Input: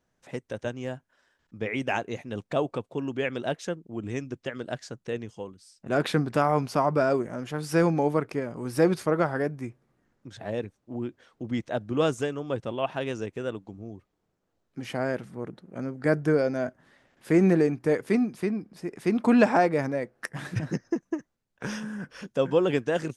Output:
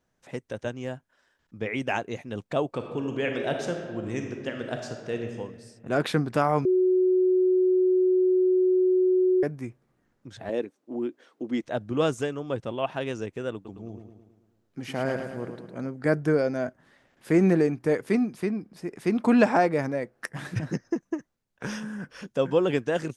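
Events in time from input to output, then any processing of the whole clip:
0:02.69–0:05.38: thrown reverb, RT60 1.7 s, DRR 3 dB
0:06.65–0:09.43: beep over 369 Hz −18 dBFS
0:10.49–0:11.63: high-pass with resonance 300 Hz, resonance Q 1.8
0:13.54–0:15.87: repeating echo 108 ms, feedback 55%, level −7 dB

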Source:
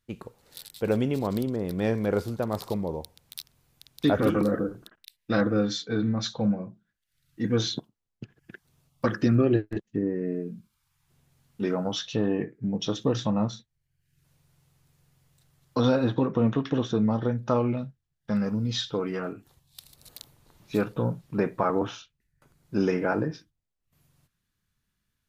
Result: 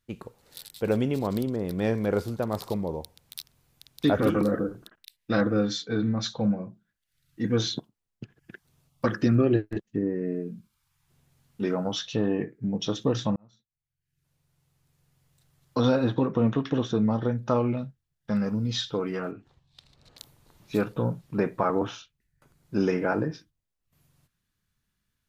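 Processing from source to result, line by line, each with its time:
0:13.36–0:15.84: fade in
0:19.31–0:20.18: high-frequency loss of the air 150 metres

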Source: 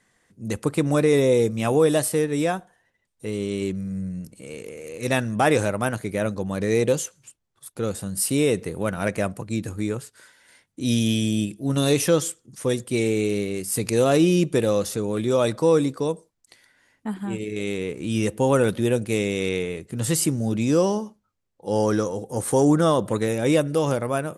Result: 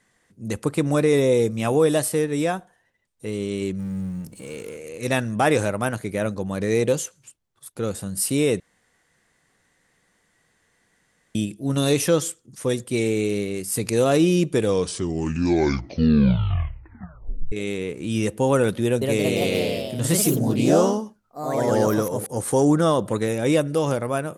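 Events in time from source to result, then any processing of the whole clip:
0:03.79–0:04.77: mu-law and A-law mismatch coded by mu
0:08.60–0:11.35: fill with room tone
0:14.51: tape stop 3.01 s
0:18.84–0:22.49: delay with pitch and tempo change per echo 173 ms, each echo +2 semitones, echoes 3

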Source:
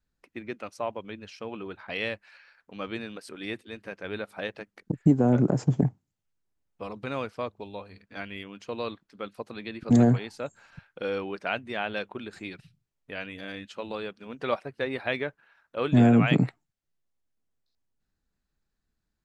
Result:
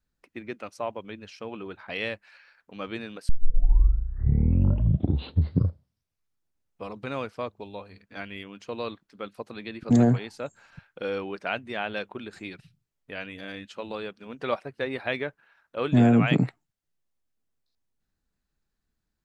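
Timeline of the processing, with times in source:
0:03.29: tape start 3.56 s

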